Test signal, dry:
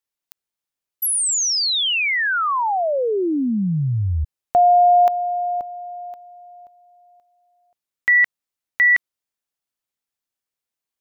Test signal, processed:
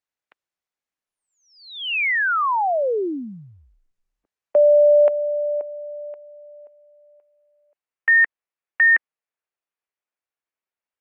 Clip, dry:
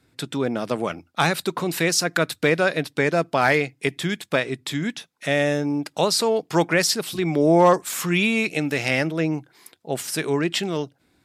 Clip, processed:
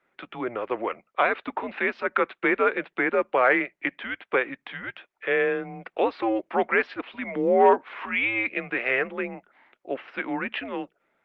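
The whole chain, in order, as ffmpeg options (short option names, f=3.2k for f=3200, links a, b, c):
-af "highpass=f=490:t=q:w=0.5412,highpass=f=490:t=q:w=1.307,lowpass=f=2.8k:t=q:w=0.5176,lowpass=f=2.8k:t=q:w=0.7071,lowpass=f=2.8k:t=q:w=1.932,afreqshift=-120" -ar 48000 -c:a libopus -b:a 32k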